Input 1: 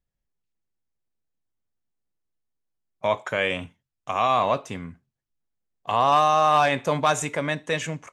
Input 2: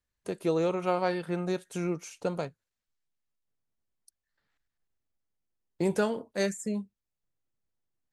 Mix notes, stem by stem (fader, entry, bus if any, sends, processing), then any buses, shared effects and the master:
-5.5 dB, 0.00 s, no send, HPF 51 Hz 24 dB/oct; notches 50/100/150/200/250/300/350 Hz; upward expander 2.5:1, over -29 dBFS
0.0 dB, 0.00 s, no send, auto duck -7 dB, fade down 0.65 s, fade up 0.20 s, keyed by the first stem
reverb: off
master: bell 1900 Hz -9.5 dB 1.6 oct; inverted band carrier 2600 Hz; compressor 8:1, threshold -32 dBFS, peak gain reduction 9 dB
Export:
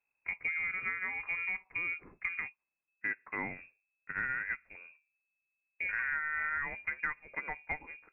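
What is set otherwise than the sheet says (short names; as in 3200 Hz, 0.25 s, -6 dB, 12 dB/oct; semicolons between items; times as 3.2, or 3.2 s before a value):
stem 1 -5.5 dB -> +2.0 dB; master: missing bell 1900 Hz -9.5 dB 1.6 oct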